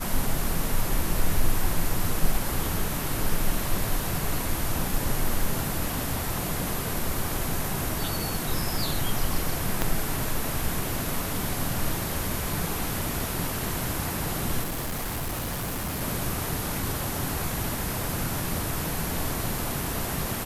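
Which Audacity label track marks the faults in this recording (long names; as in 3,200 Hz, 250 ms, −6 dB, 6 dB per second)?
9.820000	9.820000	click −8 dBFS
14.630000	16.020000	clipping −27 dBFS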